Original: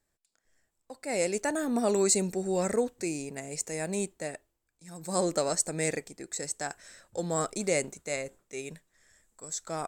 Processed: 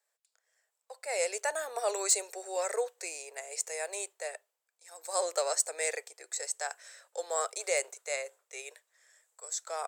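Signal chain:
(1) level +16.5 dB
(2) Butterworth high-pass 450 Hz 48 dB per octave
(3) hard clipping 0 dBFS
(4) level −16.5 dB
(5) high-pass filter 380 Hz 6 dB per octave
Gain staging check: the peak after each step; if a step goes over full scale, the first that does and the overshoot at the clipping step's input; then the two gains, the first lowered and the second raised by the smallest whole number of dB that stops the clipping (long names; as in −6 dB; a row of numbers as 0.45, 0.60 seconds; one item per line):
+5.0, +5.0, 0.0, −16.5, −15.5 dBFS
step 1, 5.0 dB
step 1 +11.5 dB, step 4 −11.5 dB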